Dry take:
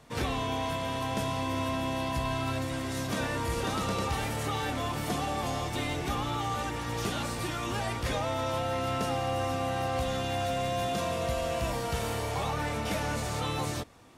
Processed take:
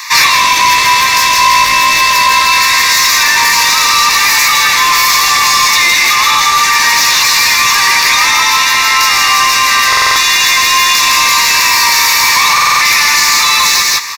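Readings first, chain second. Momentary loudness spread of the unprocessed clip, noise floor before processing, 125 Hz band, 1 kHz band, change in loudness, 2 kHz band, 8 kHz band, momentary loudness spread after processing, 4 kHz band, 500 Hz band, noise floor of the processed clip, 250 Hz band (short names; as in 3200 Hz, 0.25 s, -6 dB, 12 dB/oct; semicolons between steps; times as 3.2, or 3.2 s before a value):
2 LU, -35 dBFS, -2.0 dB, +23.5 dB, +25.0 dB, +30.0 dB, +31.5 dB, 1 LU, +30.0 dB, +2.0 dB, -10 dBFS, +1.0 dB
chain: steep high-pass 1000 Hz 72 dB/oct; high shelf 2500 Hz +7 dB; in parallel at +1 dB: negative-ratio compressor -37 dBFS; on the sum: fixed phaser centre 2100 Hz, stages 8; soft clip -32 dBFS, distortion -12 dB; on a send: feedback echo 0.161 s, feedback 19%, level -4 dB; on the sum: maximiser +31 dB; stuck buffer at 9.88/12.53, samples 2048, times 5; gain -1 dB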